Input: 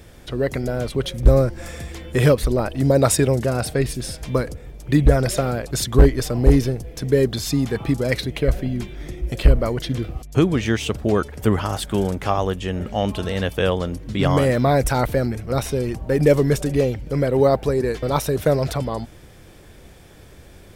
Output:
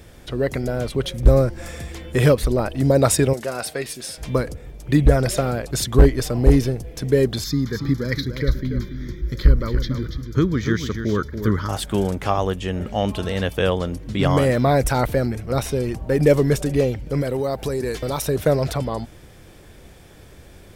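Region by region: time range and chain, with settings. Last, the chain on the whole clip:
3.33–4.18 HPF 700 Hz 6 dB/oct + doubler 13 ms -13.5 dB
7.44–11.69 fixed phaser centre 2700 Hz, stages 6 + echo 0.285 s -8.5 dB
17.21–18.22 high shelf 3800 Hz +9 dB + compressor 5:1, threshold -20 dBFS
whole clip: dry

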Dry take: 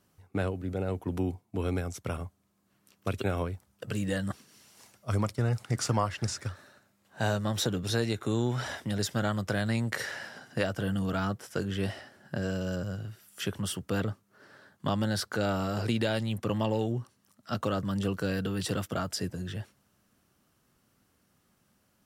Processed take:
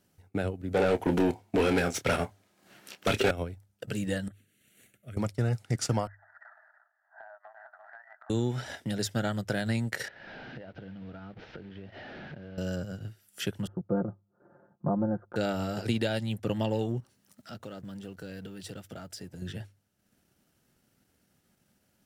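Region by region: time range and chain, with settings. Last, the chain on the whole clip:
0.74–3.31 overdrive pedal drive 27 dB, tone 3400 Hz, clips at -15.5 dBFS + doubler 28 ms -8 dB
4.28–5.17 HPF 45 Hz + compressor 4:1, threshold -39 dBFS + fixed phaser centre 2200 Hz, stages 4
6.07–8.3 brick-wall FIR band-pass 610–2000 Hz + echo 0.338 s -14 dB + compressor, threshold -45 dBFS
10.08–12.58 delta modulation 32 kbps, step -35 dBFS + air absorption 370 m + compressor 8:1, threshold -40 dBFS
13.67–15.36 steep low-pass 1200 Hz + comb 5.7 ms, depth 69%
17–19.42 G.711 law mismatch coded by mu + compressor 2:1, threshold -48 dBFS
whole clip: bell 1100 Hz -11 dB 0.29 oct; notches 50/100 Hz; transient shaper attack +1 dB, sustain -8 dB

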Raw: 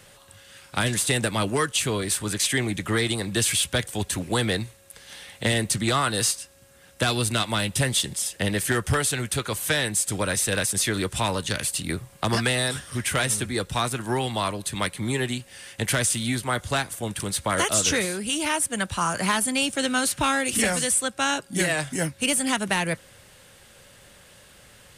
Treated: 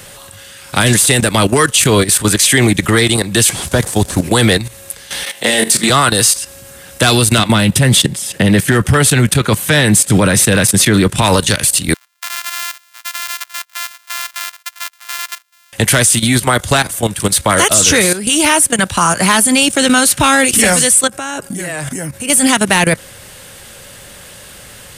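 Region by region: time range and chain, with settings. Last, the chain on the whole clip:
3.49–4.23 delta modulation 64 kbps, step -37 dBFS + bell 2700 Hz -7 dB 1.4 oct
5.24–5.9 HPF 300 Hz + flutter echo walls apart 3.8 m, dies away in 0.25 s
7.38–11.22 HPF 140 Hz + tone controls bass +10 dB, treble -6 dB
11.94–15.73 sample sorter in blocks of 128 samples + HPF 1200 Hz 24 dB/oct + upward expander 2.5:1, over -41 dBFS
21.07–22.3 bell 3800 Hz -7.5 dB 1.1 oct + compressor 4:1, threshold -33 dBFS
whole clip: high shelf 8500 Hz +6.5 dB; level quantiser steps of 14 dB; maximiser +21 dB; gain -1 dB

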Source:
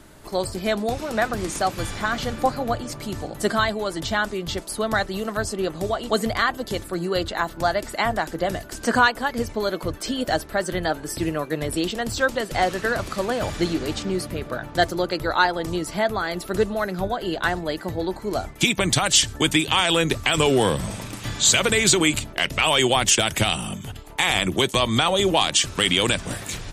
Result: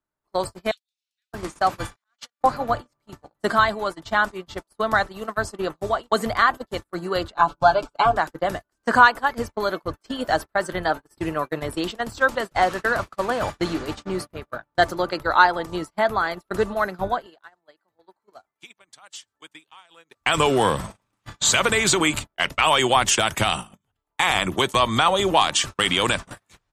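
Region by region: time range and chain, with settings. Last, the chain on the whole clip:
0.71–1.33 inverse Chebyshev high-pass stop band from 920 Hz, stop band 60 dB + high shelf 6800 Hz -10 dB
1.96–2.41 weighting filter ITU-R 468 + gate -25 dBFS, range -21 dB + auto swell 0.367 s
7.34–8.17 Butterworth band-stop 1900 Hz, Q 2.8 + air absorption 71 m + comb 7 ms, depth 90%
17.26–20.21 HPF 490 Hz 6 dB/oct + compressor 8:1, threshold -25 dBFS
whole clip: gate -26 dBFS, range -40 dB; bell 1100 Hz +9 dB 1.4 oct; gain -3 dB

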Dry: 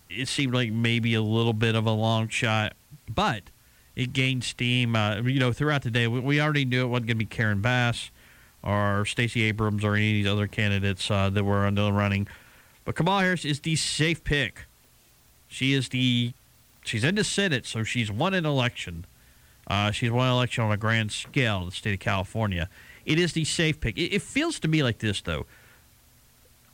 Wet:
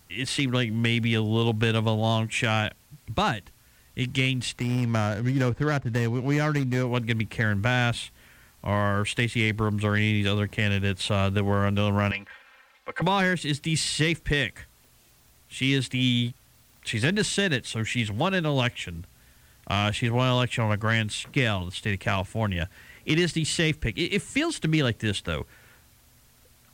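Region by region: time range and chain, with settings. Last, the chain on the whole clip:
4.58–6.86 median filter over 15 samples + high shelf 9700 Hz -9.5 dB + mismatched tape noise reduction encoder only
12.11–13.02 three-band isolator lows -19 dB, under 520 Hz, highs -15 dB, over 4200 Hz + comb 3.8 ms, depth 70%
whole clip: dry

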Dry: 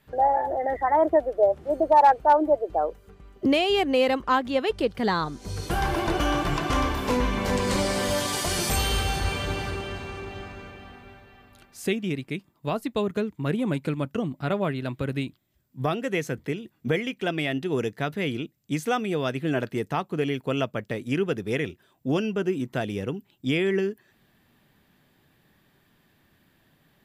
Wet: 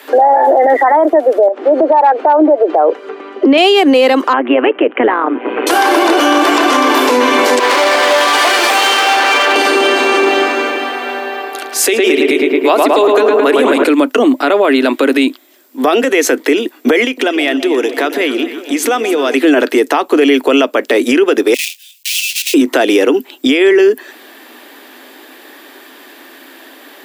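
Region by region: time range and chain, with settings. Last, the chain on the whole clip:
1.48–3.58 LPF 3000 Hz + compressor 5:1, threshold -30 dBFS
4.33–5.67 steep low-pass 2900 Hz 72 dB/oct + AM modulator 120 Hz, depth 60%
7.59–9.56 three-band isolator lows -13 dB, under 600 Hz, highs -19 dB, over 3200 Hz + hard clip -33 dBFS
10.88–13.84 HPF 320 Hz + darkening echo 0.109 s, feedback 77%, low-pass 2700 Hz, level -4 dB
17.04–19.34 compressor 10:1, threshold -37 dBFS + echo with dull and thin repeats by turns 0.133 s, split 930 Hz, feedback 78%, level -11 dB
21.54–22.54 block floating point 3-bit + elliptic high-pass 2500 Hz, stop band 60 dB + compressor 2.5:1, threshold -44 dBFS
whole clip: steep high-pass 260 Hz 72 dB/oct; compressor 4:1, threshold -28 dBFS; maximiser +29.5 dB; gain -1 dB

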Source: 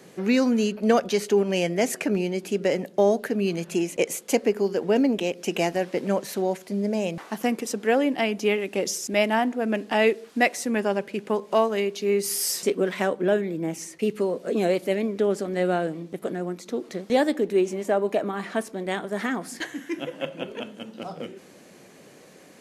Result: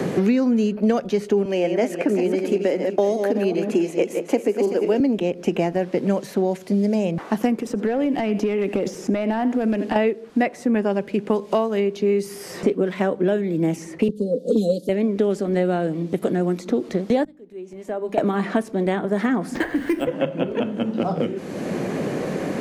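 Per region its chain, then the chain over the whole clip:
1.45–5 regenerating reverse delay 0.189 s, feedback 41%, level -7 dB + HPF 240 Hz 24 dB/oct
7.56–9.96 echo 82 ms -19.5 dB + compressor 8:1, threshold -27 dBFS + overloaded stage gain 25 dB
14.08–14.89 elliptic band-stop 550–3700 Hz + comb 4.1 ms, depth 81% + three-band expander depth 100%
17.24–18.18 flipped gate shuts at -25 dBFS, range -28 dB + notches 50/100/150/200/250/300 Hz + mismatched tape noise reduction encoder only
19.55–20.07 HPF 280 Hz + careless resampling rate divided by 4×, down none, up hold + three-band squash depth 100%
whole clip: tilt -2.5 dB/oct; three-band squash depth 100%

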